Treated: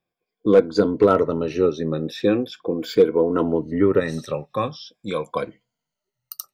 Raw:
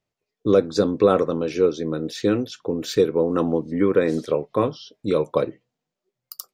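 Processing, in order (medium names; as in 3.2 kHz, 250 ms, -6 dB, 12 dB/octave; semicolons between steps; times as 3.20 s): drifting ripple filter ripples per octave 1.8, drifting -0.41 Hz, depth 13 dB; peaking EQ 7.5 kHz -11 dB 1.2 oct, from 4.00 s 370 Hz; hard clipper -6 dBFS, distortion -27 dB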